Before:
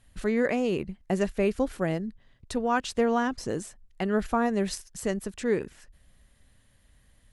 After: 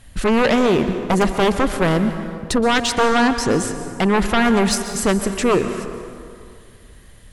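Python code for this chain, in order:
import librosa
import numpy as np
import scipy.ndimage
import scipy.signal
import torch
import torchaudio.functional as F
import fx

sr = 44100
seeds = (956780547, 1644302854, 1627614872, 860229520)

y = fx.fold_sine(x, sr, drive_db=11, ceiling_db=-12.0)
y = fx.rev_plate(y, sr, seeds[0], rt60_s=2.3, hf_ratio=0.6, predelay_ms=110, drr_db=8.5)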